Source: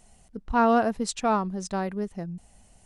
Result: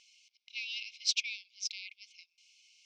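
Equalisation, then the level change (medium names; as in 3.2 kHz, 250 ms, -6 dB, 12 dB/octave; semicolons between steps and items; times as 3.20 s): brick-wall FIR high-pass 2.1 kHz; elliptic low-pass 5.6 kHz, stop band 80 dB; +7.5 dB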